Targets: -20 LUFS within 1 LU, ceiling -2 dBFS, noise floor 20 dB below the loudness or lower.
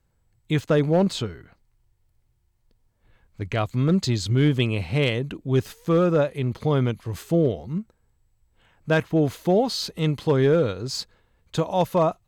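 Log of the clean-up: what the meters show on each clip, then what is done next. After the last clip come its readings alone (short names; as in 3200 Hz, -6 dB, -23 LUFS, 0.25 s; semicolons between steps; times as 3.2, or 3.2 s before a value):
clipped 0.4%; flat tops at -12.0 dBFS; loudness -23.5 LUFS; peak -12.0 dBFS; loudness target -20.0 LUFS
-> clip repair -12 dBFS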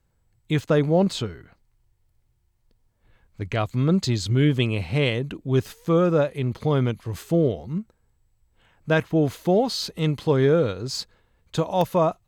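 clipped 0.0%; loudness -23.5 LUFS; peak -7.5 dBFS; loudness target -20.0 LUFS
-> gain +3.5 dB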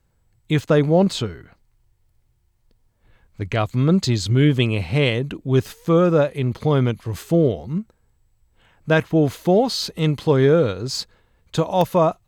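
loudness -20.0 LUFS; peak -4.0 dBFS; noise floor -65 dBFS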